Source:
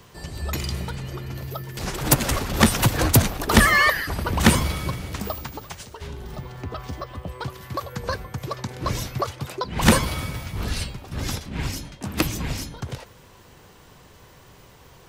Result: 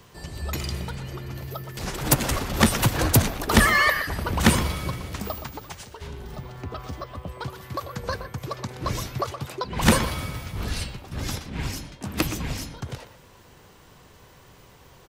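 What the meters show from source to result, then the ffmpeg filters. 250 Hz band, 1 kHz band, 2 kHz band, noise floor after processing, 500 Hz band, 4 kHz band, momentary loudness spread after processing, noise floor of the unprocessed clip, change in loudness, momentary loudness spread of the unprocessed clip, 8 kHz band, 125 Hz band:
-2.0 dB, -1.5 dB, -2.0 dB, -52 dBFS, -1.5 dB, -2.0 dB, 17 LU, -50 dBFS, -2.0 dB, 17 LU, -2.0 dB, -2.0 dB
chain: -filter_complex "[0:a]asplit=2[a][b];[b]adelay=120,highpass=300,lowpass=3.4k,asoftclip=type=hard:threshold=-10.5dB,volume=-10dB[c];[a][c]amix=inputs=2:normalize=0,volume=-2dB"

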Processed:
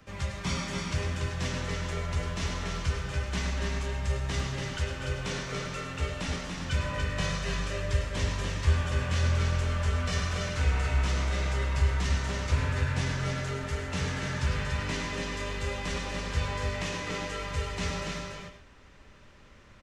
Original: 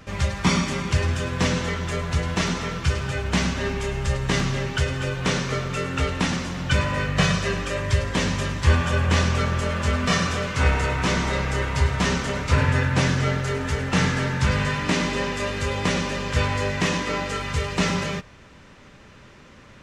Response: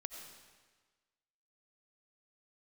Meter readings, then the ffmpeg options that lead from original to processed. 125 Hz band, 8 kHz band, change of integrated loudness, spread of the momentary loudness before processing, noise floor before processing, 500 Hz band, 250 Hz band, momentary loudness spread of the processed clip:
-6.5 dB, -7.5 dB, -7.5 dB, 5 LU, -48 dBFS, -9.5 dB, -11.5 dB, 6 LU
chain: -filter_complex "[0:a]asubboost=boost=2.5:cutoff=78,acrossover=split=170|380|2700[a][b][c][d];[b]asoftclip=type=tanh:threshold=-30dB[e];[c]alimiter=limit=-21.5dB:level=0:latency=1[f];[a][e][f][d]amix=inputs=4:normalize=0,aecho=1:1:286:0.596[g];[1:a]atrim=start_sample=2205,atrim=end_sample=6174[h];[g][h]afir=irnorm=-1:irlink=0,volume=-5.5dB"

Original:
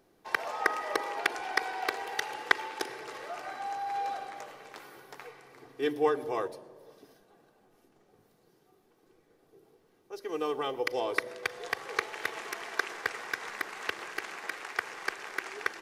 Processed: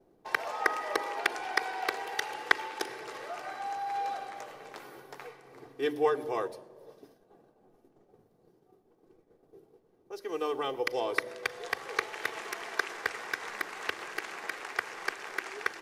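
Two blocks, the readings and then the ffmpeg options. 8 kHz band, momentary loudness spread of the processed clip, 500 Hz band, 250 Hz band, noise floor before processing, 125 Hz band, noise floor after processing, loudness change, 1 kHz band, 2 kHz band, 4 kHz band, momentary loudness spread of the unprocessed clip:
0.0 dB, 17 LU, 0.0 dB, -1.0 dB, -67 dBFS, -0.5 dB, -67 dBFS, 0.0 dB, 0.0 dB, 0.0 dB, 0.0 dB, 18 LU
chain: -filter_complex "[0:a]acrossover=split=900[a][b];[a]acompressor=mode=upward:threshold=-42dB:ratio=2.5[c];[c][b]amix=inputs=2:normalize=0,agate=range=-33dB:threshold=-46dB:ratio=3:detection=peak,bandreject=f=50:t=h:w=6,bandreject=f=100:t=h:w=6,bandreject=f=150:t=h:w=6,bandreject=f=200:t=h:w=6,bandreject=f=250:t=h:w=6,bandreject=f=300:t=h:w=6"

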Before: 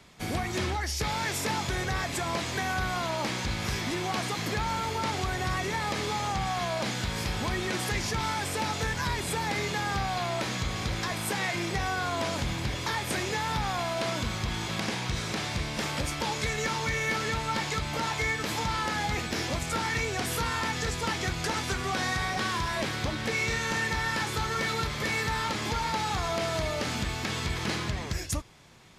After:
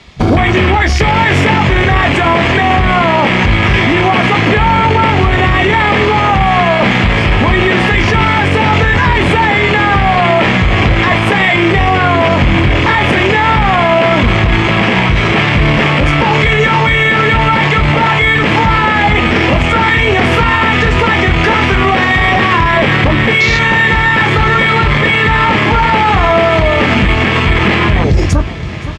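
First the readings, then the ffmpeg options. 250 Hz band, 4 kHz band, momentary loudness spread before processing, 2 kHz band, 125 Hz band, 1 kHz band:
+21.5 dB, +16.0 dB, 3 LU, +21.5 dB, +21.0 dB, +20.0 dB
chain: -filter_complex "[0:a]equalizer=f=1.2k:w=0.58:g=-3,areverse,acompressor=mode=upward:threshold=-43dB:ratio=2.5,areverse,lowpass=3.1k,bandreject=f=1.5k:w=13,asplit=2[a][b];[b]adelay=21,volume=-8dB[c];[a][c]amix=inputs=2:normalize=0,afwtdn=0.0112,highshelf=f=2.2k:g=10.5,aecho=1:1:518|1036|1554|2072:0.0891|0.0481|0.026|0.014,alimiter=level_in=31dB:limit=-1dB:release=50:level=0:latency=1,volume=-1dB"

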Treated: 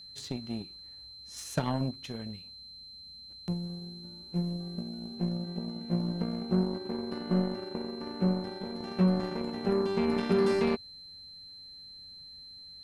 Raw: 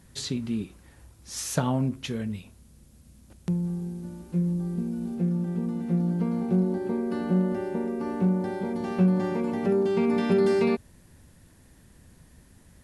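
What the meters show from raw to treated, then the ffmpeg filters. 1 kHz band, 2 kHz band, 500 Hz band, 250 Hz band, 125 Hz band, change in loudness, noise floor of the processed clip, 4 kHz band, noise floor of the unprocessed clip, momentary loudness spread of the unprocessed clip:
-3.5 dB, -4.0 dB, -5.0 dB, -5.5 dB, -5.5 dB, -5.0 dB, -49 dBFS, n/a, -56 dBFS, 10 LU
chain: -af "acontrast=30,aeval=exprs='0.501*(cos(1*acos(clip(val(0)/0.501,-1,1)))-cos(1*PI/2))+0.0178*(cos(5*acos(clip(val(0)/0.501,-1,1)))-cos(5*PI/2))+0.0562*(cos(7*acos(clip(val(0)/0.501,-1,1)))-cos(7*PI/2))':c=same,aeval=exprs='val(0)+0.0141*sin(2*PI*4100*n/s)':c=same,volume=-9dB"

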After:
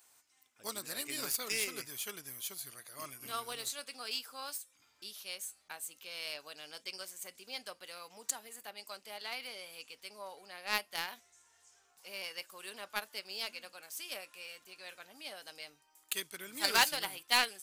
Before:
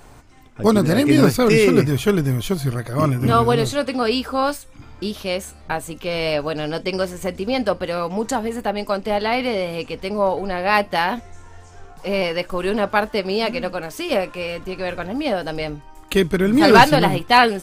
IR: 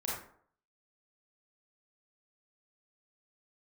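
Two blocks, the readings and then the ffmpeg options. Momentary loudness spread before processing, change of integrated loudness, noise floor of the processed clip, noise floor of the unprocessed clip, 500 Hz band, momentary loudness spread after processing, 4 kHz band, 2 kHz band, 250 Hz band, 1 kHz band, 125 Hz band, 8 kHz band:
13 LU, -18.5 dB, -71 dBFS, -44 dBFS, -29.5 dB, 15 LU, -10.5 dB, -15.5 dB, -35.0 dB, -22.0 dB, -40.0 dB, -5.0 dB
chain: -af "aderivative,aeval=exprs='0.376*(cos(1*acos(clip(val(0)/0.376,-1,1)))-cos(1*PI/2))+0.0299*(cos(7*acos(clip(val(0)/0.376,-1,1)))-cos(7*PI/2))':c=same,volume=-1dB"

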